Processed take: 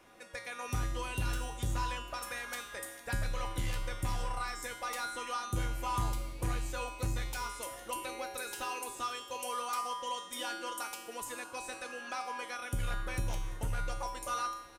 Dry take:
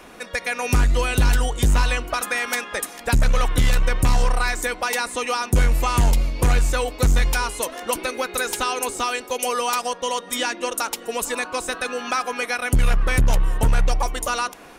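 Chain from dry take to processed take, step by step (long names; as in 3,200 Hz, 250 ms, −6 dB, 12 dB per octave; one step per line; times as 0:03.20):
tuned comb filter 110 Hz, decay 0.81 s, harmonics odd, mix 90%
on a send: repeating echo 340 ms, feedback 48%, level −21.5 dB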